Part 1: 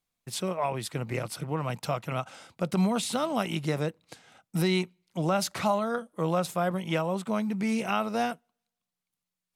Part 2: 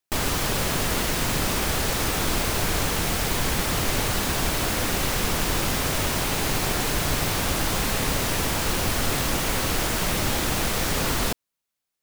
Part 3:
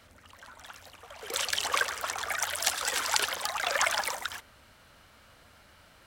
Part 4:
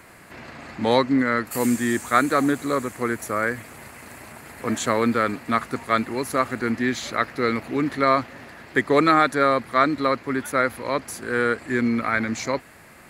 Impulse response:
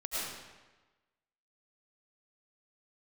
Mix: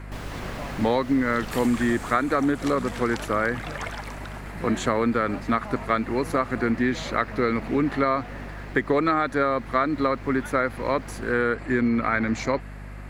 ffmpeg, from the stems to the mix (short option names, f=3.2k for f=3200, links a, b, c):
-filter_complex "[0:a]volume=-12.5dB[a];[1:a]volume=-10.5dB,afade=t=out:st=1.8:d=0.69:silence=0.237137[b];[2:a]volume=-5.5dB[c];[3:a]aeval=exprs='val(0)+0.01*(sin(2*PI*50*n/s)+sin(2*PI*2*50*n/s)/2+sin(2*PI*3*50*n/s)/3+sin(2*PI*4*50*n/s)/4+sin(2*PI*5*50*n/s)/5)':c=same,volume=3dB[d];[a][b][c][d]amix=inputs=4:normalize=0,lowpass=f=2.3k:p=1,acompressor=threshold=-18dB:ratio=6"